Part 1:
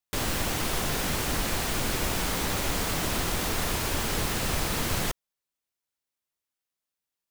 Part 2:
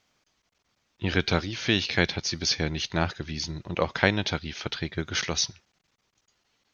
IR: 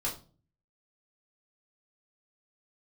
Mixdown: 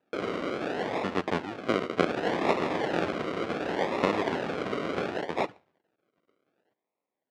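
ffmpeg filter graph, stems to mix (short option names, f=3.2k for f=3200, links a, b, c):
-filter_complex "[0:a]acrusher=samples=22:mix=1:aa=0.000001,asoftclip=type=hard:threshold=-24.5dB,volume=1dB,asplit=3[a][b][c];[a]atrim=end=1.07,asetpts=PTS-STARTPTS,afade=t=out:st=1.066:d=0.004:c=hsin[d];[b]atrim=start=1.07:end=1.99,asetpts=PTS-STARTPTS,volume=0[e];[c]atrim=start=1.99,asetpts=PTS-STARTPTS,afade=t=in:d=0.004:c=hsin[f];[d][e][f]concat=n=3:v=0:a=1,asplit=2[g][h];[h]volume=-12.5dB[i];[1:a]equalizer=f=870:w=0.49:g=-7,bandreject=f=2.3k:w=12,volume=2.5dB,asplit=2[j][k];[k]volume=-19.5dB[l];[2:a]atrim=start_sample=2205[m];[i][l]amix=inputs=2:normalize=0[n];[n][m]afir=irnorm=-1:irlink=0[o];[g][j][o]amix=inputs=3:normalize=0,acrusher=samples=40:mix=1:aa=0.000001:lfo=1:lforange=24:lforate=0.68,highpass=310,lowpass=3k"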